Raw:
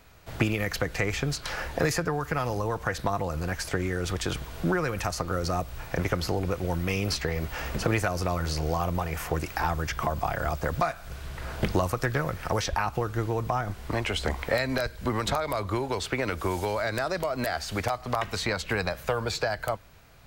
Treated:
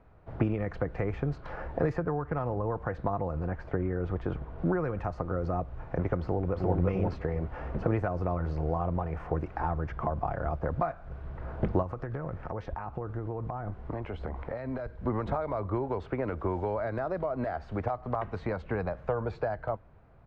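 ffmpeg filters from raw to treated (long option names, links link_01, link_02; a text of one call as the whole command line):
ffmpeg -i in.wav -filter_complex "[0:a]asettb=1/sr,asplit=3[link_01][link_02][link_03];[link_01]atrim=end=2.044[link_04];[link_02]atrim=start=2.04:end=2.65,asetpts=PTS-STARTPTS,afade=type=in:duration=0.004:curve=qsin,afade=type=out:start_time=0.606:duration=0.004:curve=qsin,adynamicsmooth=sensitivity=6.5:basefreq=3200[link_05];[link_03]atrim=start=2.646[link_06];[link_04][link_05]acrossfade=duration=0.004:curve1=hsin:curve2=qsin[link_07];[link_07][link_06]acrossfade=duration=0.004:curve1=qsin:curve2=hsin,asettb=1/sr,asplit=3[link_08][link_09][link_10];[link_08]atrim=end=3.474[link_11];[link_09]atrim=start=3.47:end=4.59,asetpts=PTS-STARTPTS,afade=type=in:duration=0.004:curve=qsin,afade=type=out:start_time=1.116:duration=0.004:curve=qsin,aemphasis=mode=reproduction:type=50fm[link_12];[link_10]atrim=start=4.586[link_13];[link_11][link_12]acrossfade=duration=0.004:curve1=hsin:curve2=qsin[link_14];[link_14][link_13]acrossfade=duration=0.004:curve1=qsin:curve2=hsin,asplit=2[link_15][link_16];[link_16]afade=type=in:start_time=6.21:duration=0.01,afade=type=out:start_time=6.73:duration=0.01,aecho=0:1:350|700|1050:0.944061|0.141609|0.0212414[link_17];[link_15][link_17]amix=inputs=2:normalize=0,asettb=1/sr,asplit=3[link_18][link_19][link_20];[link_18]atrim=end=11.824[link_21];[link_19]atrim=start=11.82:end=15.02,asetpts=PTS-STARTPTS,afade=type=in:duration=0.004:curve=qsin,afade=type=out:start_time=3.196:duration=0.004:curve=qsin,acompressor=threshold=-28dB:ratio=6:attack=3.2:release=140:knee=1:detection=peak[link_22];[link_20]atrim=start=15.016[link_23];[link_21][link_22]acrossfade=duration=0.004:curve1=hsin:curve2=qsin[link_24];[link_24][link_23]acrossfade=duration=0.004:curve1=qsin:curve2=hsin,lowpass=1000,volume=-1.5dB" out.wav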